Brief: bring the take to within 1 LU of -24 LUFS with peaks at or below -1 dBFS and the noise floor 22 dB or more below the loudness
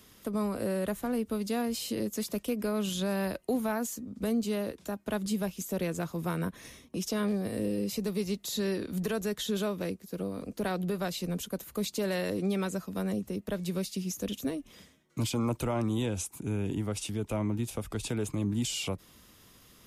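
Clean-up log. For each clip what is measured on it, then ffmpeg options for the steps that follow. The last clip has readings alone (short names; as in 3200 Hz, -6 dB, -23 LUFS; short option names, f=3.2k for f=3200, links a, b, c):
loudness -33.0 LUFS; peak -20.5 dBFS; loudness target -24.0 LUFS
-> -af "volume=9dB"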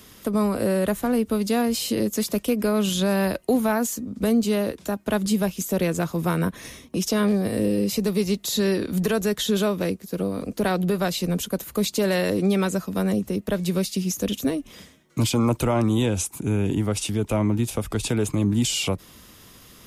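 loudness -24.0 LUFS; peak -11.5 dBFS; noise floor -50 dBFS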